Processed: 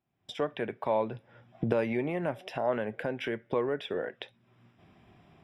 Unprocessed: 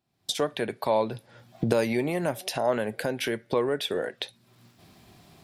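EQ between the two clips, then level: polynomial smoothing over 25 samples; -4.0 dB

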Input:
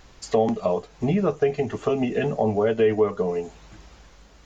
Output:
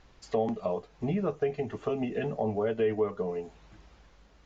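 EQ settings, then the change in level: air absorption 90 m; -7.5 dB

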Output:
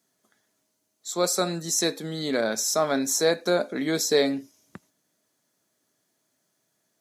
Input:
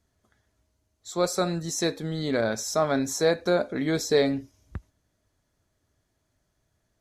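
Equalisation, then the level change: HPF 170 Hz 24 dB/oct; high shelf 4100 Hz +7.5 dB; high shelf 11000 Hz +4.5 dB; 0.0 dB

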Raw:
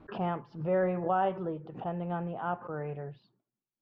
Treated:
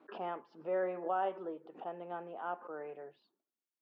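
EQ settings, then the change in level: HPF 280 Hz 24 dB/oct; -5.5 dB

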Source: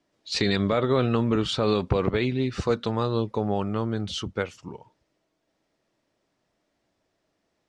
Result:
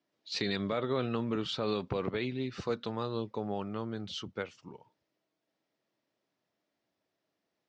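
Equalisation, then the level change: BPF 120–6000 Hz; air absorption 73 m; high shelf 4200 Hz +9.5 dB; -9.0 dB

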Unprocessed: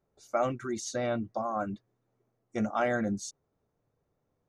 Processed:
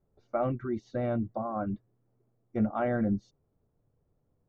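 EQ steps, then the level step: air absorption 260 m; tilt -2.5 dB/oct; high shelf 8700 Hz -7.5 dB; -2.0 dB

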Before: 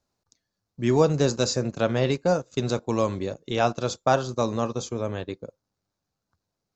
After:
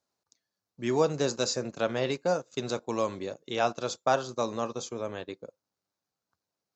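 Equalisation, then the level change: HPF 340 Hz 6 dB/oct; -3.0 dB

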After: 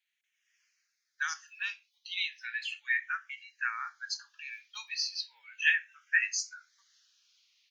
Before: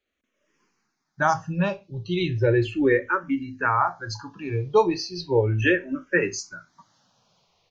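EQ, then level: steep high-pass 1700 Hz 36 dB/oct; 0.0 dB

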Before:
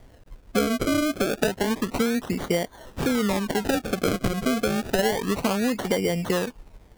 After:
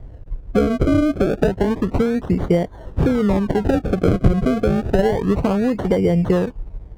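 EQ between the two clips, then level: HPF 73 Hz 6 dB/oct; tilt -4.5 dB/oct; bell 230 Hz -7 dB 0.45 oct; +2.0 dB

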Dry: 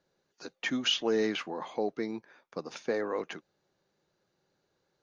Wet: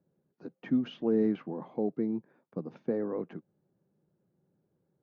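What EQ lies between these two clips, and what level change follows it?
band-pass 170 Hz, Q 1.3; air absorption 110 m; +9.0 dB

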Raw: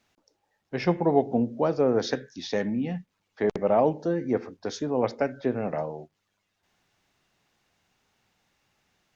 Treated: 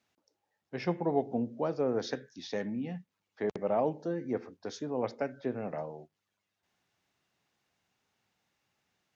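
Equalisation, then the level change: HPF 74 Hz; -7.5 dB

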